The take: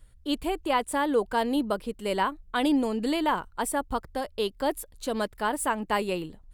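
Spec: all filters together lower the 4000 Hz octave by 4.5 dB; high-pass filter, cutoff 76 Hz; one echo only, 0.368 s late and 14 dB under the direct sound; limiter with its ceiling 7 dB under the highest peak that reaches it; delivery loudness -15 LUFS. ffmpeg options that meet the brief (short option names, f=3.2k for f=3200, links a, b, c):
-af "highpass=76,equalizer=f=4k:t=o:g=-6.5,alimiter=limit=-21dB:level=0:latency=1,aecho=1:1:368:0.2,volume=16dB"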